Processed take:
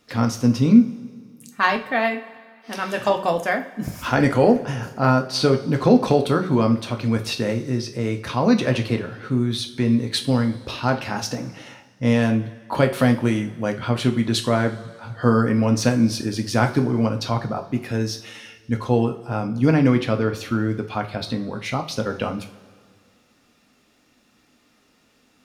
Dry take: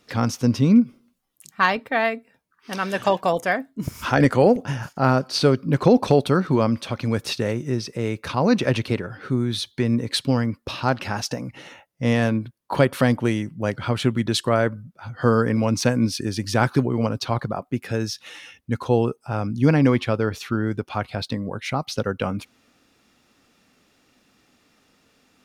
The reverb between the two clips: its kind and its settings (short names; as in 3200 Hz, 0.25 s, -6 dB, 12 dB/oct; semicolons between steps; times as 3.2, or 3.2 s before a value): two-slope reverb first 0.33 s, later 2 s, from -18 dB, DRR 4.5 dB; gain -1 dB